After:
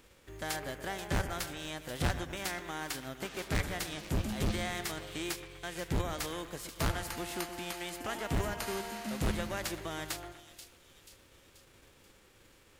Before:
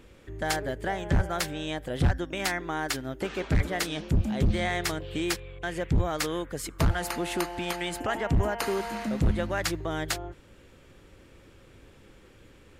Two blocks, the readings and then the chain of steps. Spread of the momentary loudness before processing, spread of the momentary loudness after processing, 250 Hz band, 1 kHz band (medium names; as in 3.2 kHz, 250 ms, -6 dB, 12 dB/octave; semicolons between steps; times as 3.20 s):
6 LU, 7 LU, -8.0 dB, -7.0 dB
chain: formants flattened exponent 0.6; two-band feedback delay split 2.6 kHz, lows 123 ms, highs 484 ms, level -11.5 dB; trim -8.5 dB